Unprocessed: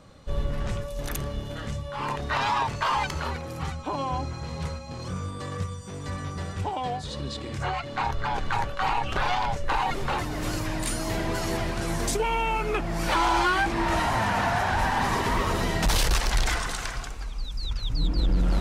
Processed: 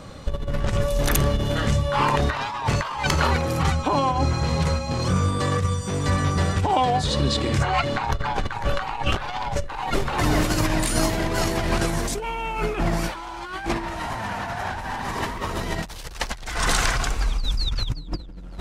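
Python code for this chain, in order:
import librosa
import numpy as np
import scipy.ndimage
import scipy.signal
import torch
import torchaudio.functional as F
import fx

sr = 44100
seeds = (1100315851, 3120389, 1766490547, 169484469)

y = fx.over_compress(x, sr, threshold_db=-30.0, ratio=-0.5)
y = F.gain(torch.from_numpy(y), 7.5).numpy()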